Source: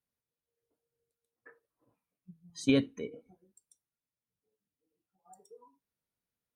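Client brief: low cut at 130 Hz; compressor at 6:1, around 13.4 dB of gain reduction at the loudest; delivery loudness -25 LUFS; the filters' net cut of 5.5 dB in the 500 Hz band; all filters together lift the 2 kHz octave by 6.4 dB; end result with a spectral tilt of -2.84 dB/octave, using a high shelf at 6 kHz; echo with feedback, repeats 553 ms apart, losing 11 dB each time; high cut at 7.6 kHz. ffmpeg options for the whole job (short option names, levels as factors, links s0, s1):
-af "highpass=130,lowpass=7600,equalizer=f=500:t=o:g=-7,equalizer=f=2000:t=o:g=7,highshelf=f=6000:g=8.5,acompressor=threshold=0.0158:ratio=6,aecho=1:1:553|1106|1659:0.282|0.0789|0.0221,volume=11.2"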